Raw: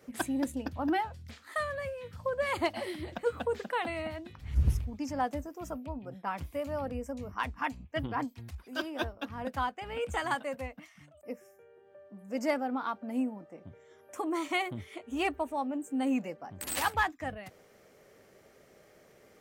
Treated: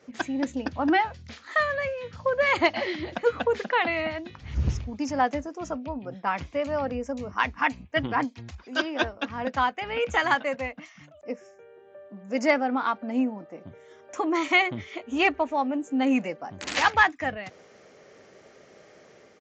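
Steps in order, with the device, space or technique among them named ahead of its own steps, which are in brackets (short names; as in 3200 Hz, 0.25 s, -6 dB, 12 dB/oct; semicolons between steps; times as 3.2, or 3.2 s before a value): dynamic EQ 2100 Hz, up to +5 dB, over -50 dBFS, Q 1.8; Bluetooth headset (HPF 150 Hz 6 dB/oct; AGC gain up to 5 dB; downsampling 16000 Hz; gain +2.5 dB; SBC 64 kbps 16000 Hz)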